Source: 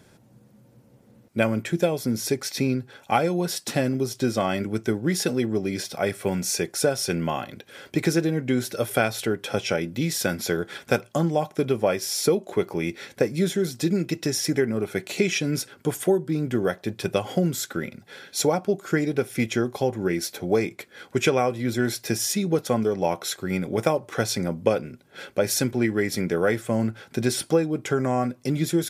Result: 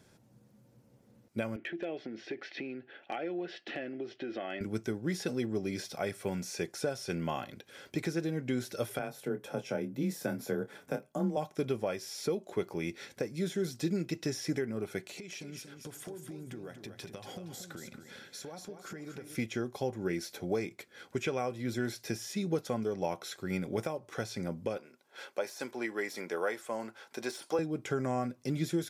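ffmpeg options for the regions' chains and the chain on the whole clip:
-filter_complex "[0:a]asettb=1/sr,asplit=3[s0][s1][s2];[s0]atrim=end=1.564[s3];[s1]atrim=start=1.56:end=4.61,asetpts=PTS-STARTPTS,afade=t=in:d=0.004:c=qsin,afade=t=out:st=3.046:d=0.004:c=qsin,acompressor=threshold=0.0501:ratio=6:attack=3.2:release=140:knee=1:detection=peak,highpass=290,equalizer=f=330:t=q:w=4:g=9,equalizer=f=690:t=q:w=4:g=5,equalizer=f=1000:t=q:w=4:g=-9,equalizer=f=1800:t=q:w=4:g=8,equalizer=f=2900:t=q:w=4:g=8,lowpass=f=3200:w=0.5412,lowpass=f=3200:w=1.3066,asoftclip=type=hard:threshold=0.106[s4];[s2]atrim=start=4.606[s5];[s3][s4]acrossfade=d=0.004:c1=hsin:c2=qsin[s6];[s6][s5]acrossfade=d=0.004:c1=qsin:c2=hsin,asettb=1/sr,asplit=3[s7][s8][s9];[s7]atrim=end=8.994[s10];[s8]atrim=start=8.99:end=11.37,asetpts=PTS-STARTPTS,afade=t=in:d=0.004:c=qsin,afade=t=out:st=2.376:d=0.004:c=qsin,equalizer=f=4200:t=o:w=2.6:g=-12,afreqshift=22,asplit=2[s11][s12];[s12]adelay=26,volume=0.335[s13];[s11][s13]amix=inputs=2:normalize=0,atrim=end_sample=104958[s14];[s9]atrim=start=11.366[s15];[s10][s14]acrossfade=d=0.004:c1=hsin:c2=qsin[s16];[s16][s15]acrossfade=d=0.004:c1=qsin:c2=hsin,asettb=1/sr,asplit=3[s17][s18][s19];[s17]atrim=end=15.064[s20];[s18]atrim=start=15.06:end=19.36,asetpts=PTS-STARTPTS,afade=t=in:d=0.004:c=qsin,afade=t=out:st=4.296:d=0.004:c=qsin,acompressor=threshold=0.0224:ratio=8:attack=3.2:release=140:knee=1:detection=peak,aecho=1:1:234|468|702:0.398|0.111|0.0312,atrim=end_sample=189630[s21];[s19]atrim=start=19.356[s22];[s20][s21]acrossfade=d=0.004:c1=hsin:c2=qsin[s23];[s23][s22]acrossfade=d=0.004:c1=qsin:c2=hsin,asettb=1/sr,asplit=3[s24][s25][s26];[s24]atrim=end=24.774[s27];[s25]atrim=start=24.77:end=27.59,asetpts=PTS-STARTPTS,afade=t=in:d=0.004:c=qsin,afade=t=out:st=2.816:d=0.004:c=qsin,deesser=0.6,highpass=430,equalizer=f=970:t=o:w=0.53:g=6.5[s28];[s26]atrim=start=27.586[s29];[s27][s28]acrossfade=d=0.004:c1=hsin:c2=qsin[s30];[s30][s29]acrossfade=d=0.004:c1=qsin:c2=hsin,acrossover=split=3400[s31][s32];[s32]acompressor=threshold=0.0178:ratio=4:attack=1:release=60[s33];[s31][s33]amix=inputs=2:normalize=0,equalizer=f=5700:w=1.5:g=3,alimiter=limit=0.224:level=0:latency=1:release=459,volume=0.398"

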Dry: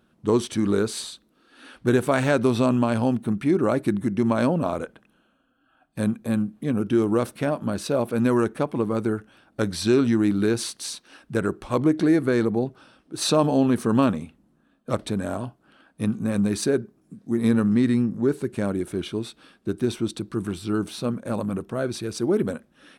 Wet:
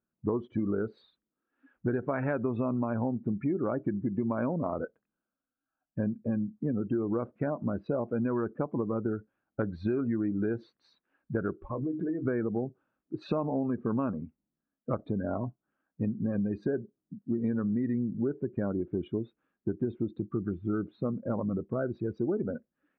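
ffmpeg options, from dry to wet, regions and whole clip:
-filter_complex "[0:a]asettb=1/sr,asplit=3[s0][s1][s2];[s0]atrim=end=11.564[s3];[s1]atrim=start=11.56:end=12.25,asetpts=PTS-STARTPTS,afade=t=in:d=0.004:c=qsin,afade=t=out:st=0.686:d=0.004:c=qsin,bandreject=f=50:t=h:w=6,bandreject=f=100:t=h:w=6,bandreject=f=150:t=h:w=6,bandreject=f=200:t=h:w=6,bandreject=f=250:t=h:w=6,bandreject=f=300:t=h:w=6,bandreject=f=350:t=h:w=6,acompressor=threshold=0.0355:ratio=5:attack=3.2:release=140:knee=1:detection=peak,asplit=2[s4][s5];[s5]adelay=23,volume=0.282[s6];[s4][s6]amix=inputs=2:normalize=0,atrim=end_sample=30429[s7];[s2]atrim=start=12.246[s8];[s3][s7]acrossfade=d=0.004:c1=hsin:c2=qsin[s9];[s9][s8]acrossfade=d=0.004:c1=qsin:c2=hsin,afftdn=nr=25:nf=-31,lowpass=f=2100:w=0.5412,lowpass=f=2100:w=1.3066,acompressor=threshold=0.0447:ratio=6"

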